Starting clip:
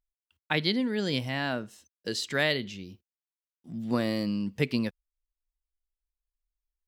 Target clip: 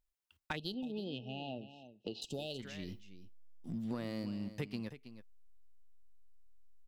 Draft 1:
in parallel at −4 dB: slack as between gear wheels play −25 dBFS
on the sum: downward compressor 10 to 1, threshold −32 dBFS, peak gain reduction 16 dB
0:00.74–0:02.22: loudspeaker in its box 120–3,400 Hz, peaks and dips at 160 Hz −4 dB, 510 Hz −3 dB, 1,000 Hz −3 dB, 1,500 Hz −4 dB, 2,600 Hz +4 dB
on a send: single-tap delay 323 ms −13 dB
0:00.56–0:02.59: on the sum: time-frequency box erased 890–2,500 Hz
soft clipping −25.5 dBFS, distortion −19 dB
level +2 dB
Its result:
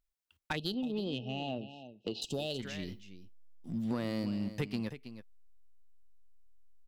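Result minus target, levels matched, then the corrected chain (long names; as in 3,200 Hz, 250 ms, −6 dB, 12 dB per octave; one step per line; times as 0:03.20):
downward compressor: peak gain reduction −6 dB
in parallel at −4 dB: slack as between gear wheels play −25 dBFS
on the sum: downward compressor 10 to 1, threshold −38.5 dBFS, peak gain reduction 22 dB
0:00.74–0:02.22: loudspeaker in its box 120–3,400 Hz, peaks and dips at 160 Hz −4 dB, 510 Hz −3 dB, 1,000 Hz −3 dB, 1,500 Hz −4 dB, 2,600 Hz +4 dB
on a send: single-tap delay 323 ms −13 dB
0:00.56–0:02.59: on the sum: time-frequency box erased 890–2,500 Hz
soft clipping −25.5 dBFS, distortion −27 dB
level +2 dB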